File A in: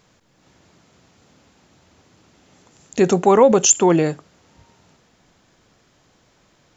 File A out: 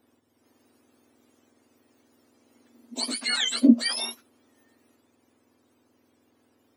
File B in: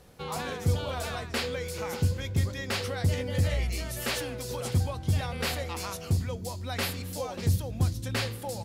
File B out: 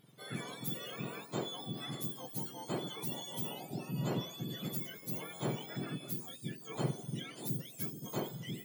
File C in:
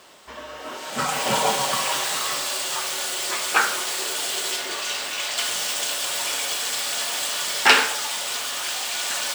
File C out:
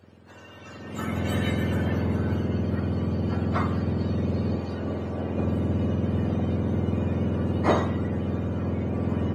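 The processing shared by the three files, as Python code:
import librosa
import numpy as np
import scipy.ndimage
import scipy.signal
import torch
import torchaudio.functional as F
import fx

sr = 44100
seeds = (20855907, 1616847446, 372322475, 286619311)

y = fx.octave_mirror(x, sr, pivot_hz=1300.0)
y = F.gain(torch.from_numpy(y), -8.0).numpy()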